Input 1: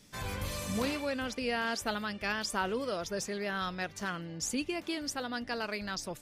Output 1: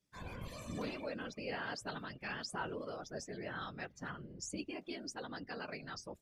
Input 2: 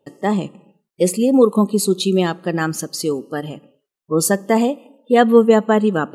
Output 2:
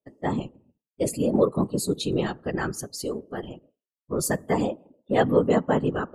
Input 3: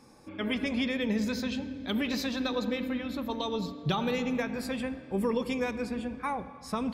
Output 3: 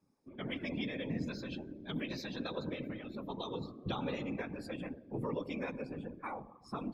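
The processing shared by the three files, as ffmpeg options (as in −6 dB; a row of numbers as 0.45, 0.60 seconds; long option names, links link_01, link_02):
-af "afftdn=noise_reduction=17:noise_floor=-42,afftfilt=real='hypot(re,im)*cos(2*PI*random(0))':imag='hypot(re,im)*sin(2*PI*random(1))':win_size=512:overlap=0.75,volume=-2.5dB"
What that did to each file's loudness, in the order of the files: −9.0, −8.5, −9.0 LU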